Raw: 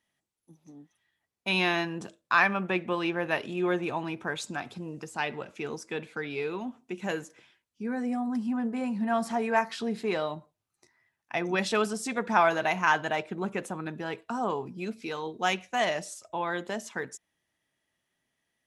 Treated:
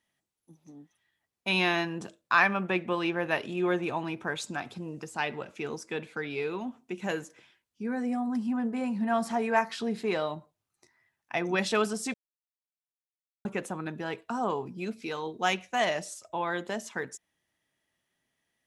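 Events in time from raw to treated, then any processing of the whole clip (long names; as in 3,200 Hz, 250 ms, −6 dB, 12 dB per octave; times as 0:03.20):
0:12.14–0:13.45: silence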